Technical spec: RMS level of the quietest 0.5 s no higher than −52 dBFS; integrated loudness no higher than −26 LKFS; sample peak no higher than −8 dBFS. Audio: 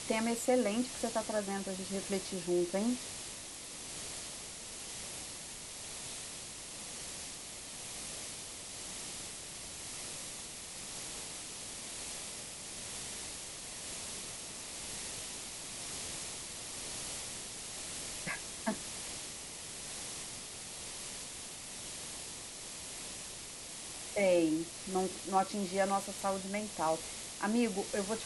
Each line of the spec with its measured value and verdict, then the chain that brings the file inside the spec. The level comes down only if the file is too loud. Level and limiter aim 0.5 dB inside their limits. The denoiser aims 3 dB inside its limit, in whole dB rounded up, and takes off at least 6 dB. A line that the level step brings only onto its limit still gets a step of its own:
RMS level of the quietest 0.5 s −46 dBFS: out of spec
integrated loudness −38.0 LKFS: in spec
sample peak −18.5 dBFS: in spec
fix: broadband denoise 9 dB, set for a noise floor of −46 dBFS

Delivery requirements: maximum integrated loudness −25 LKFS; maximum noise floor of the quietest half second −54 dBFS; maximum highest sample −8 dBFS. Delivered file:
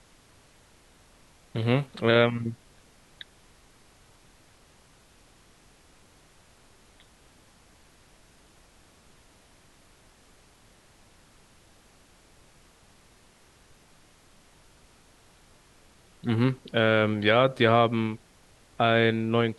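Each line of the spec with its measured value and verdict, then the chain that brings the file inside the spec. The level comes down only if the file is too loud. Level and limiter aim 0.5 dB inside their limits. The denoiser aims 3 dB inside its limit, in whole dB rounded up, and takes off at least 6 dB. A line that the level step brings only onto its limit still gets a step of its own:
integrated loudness −24.5 LKFS: out of spec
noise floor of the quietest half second −58 dBFS: in spec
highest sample −6.0 dBFS: out of spec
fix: level −1 dB
brickwall limiter −8.5 dBFS

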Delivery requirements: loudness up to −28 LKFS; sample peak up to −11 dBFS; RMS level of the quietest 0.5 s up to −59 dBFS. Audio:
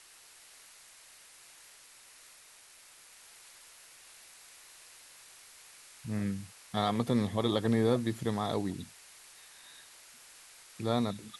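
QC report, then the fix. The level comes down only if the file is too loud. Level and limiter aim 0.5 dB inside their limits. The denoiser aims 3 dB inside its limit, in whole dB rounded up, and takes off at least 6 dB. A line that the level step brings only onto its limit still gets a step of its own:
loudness −32.0 LKFS: in spec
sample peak −15.0 dBFS: in spec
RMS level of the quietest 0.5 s −57 dBFS: out of spec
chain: broadband denoise 6 dB, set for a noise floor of −57 dBFS

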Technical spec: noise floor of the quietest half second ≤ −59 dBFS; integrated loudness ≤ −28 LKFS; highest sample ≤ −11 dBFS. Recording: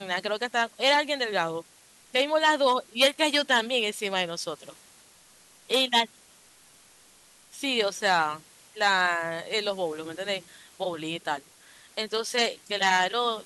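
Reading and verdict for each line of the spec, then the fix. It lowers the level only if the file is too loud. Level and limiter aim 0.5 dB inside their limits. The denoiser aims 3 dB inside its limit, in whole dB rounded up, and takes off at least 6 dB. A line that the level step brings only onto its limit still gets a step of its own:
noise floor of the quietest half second −56 dBFS: out of spec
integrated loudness −26.0 LKFS: out of spec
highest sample −8.5 dBFS: out of spec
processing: broadband denoise 6 dB, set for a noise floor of −56 dBFS
level −2.5 dB
brickwall limiter −11.5 dBFS

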